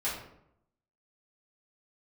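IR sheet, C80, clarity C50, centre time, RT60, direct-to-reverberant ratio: 7.5 dB, 4.0 dB, 42 ms, 0.75 s, -10.0 dB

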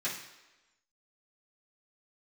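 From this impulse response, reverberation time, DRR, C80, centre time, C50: 1.1 s, -11.5 dB, 8.5 dB, 36 ms, 5.5 dB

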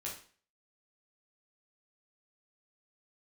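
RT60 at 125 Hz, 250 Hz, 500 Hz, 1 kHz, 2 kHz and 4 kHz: 0.40, 0.45, 0.45, 0.45, 0.45, 0.40 s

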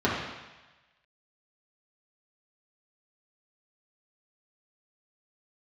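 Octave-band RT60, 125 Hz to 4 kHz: 1.1, 0.95, 1.1, 1.2, 1.3, 1.2 s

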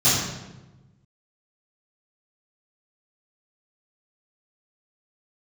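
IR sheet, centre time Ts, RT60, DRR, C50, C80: 75 ms, 1.1 s, -15.5 dB, 0.0 dB, 2.5 dB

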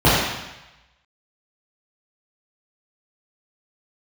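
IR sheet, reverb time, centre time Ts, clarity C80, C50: 1.0 s, 85 ms, 1.5 dB, -1.5 dB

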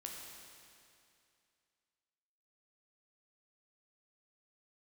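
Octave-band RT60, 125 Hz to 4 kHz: 2.5, 2.5, 2.5, 2.5, 2.5, 2.4 s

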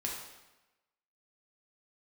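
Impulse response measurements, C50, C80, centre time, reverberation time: 2.5 dB, 5.0 dB, 52 ms, 1.0 s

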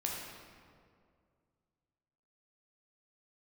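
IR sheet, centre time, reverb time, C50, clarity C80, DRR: 91 ms, 2.2 s, 0.5 dB, 2.5 dB, -2.5 dB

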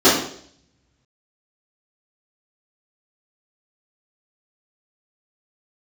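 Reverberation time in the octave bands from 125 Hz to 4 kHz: 1.9, 0.65, 0.65, 0.55, 0.55, 0.65 s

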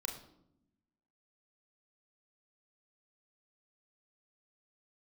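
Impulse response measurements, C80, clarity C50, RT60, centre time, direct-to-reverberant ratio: 11.0 dB, 8.5 dB, 0.80 s, 25 ms, 1.5 dB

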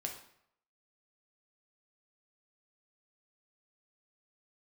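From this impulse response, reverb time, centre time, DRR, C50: 0.70 s, 22 ms, 1.5 dB, 7.0 dB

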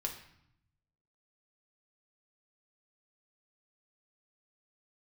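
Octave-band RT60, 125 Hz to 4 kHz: 1.4, 1.0, 0.65, 0.75, 0.70, 0.65 s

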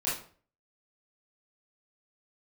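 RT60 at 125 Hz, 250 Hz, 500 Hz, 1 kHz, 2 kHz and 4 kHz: 0.55, 0.45, 0.45, 0.40, 0.40, 0.35 s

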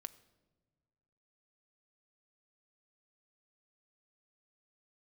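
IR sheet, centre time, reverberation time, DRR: 3 ms, not exponential, 11.5 dB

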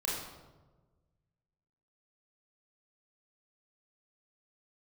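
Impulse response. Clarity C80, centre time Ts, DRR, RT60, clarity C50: 4.0 dB, 67 ms, -5.0 dB, 1.3 s, 1.0 dB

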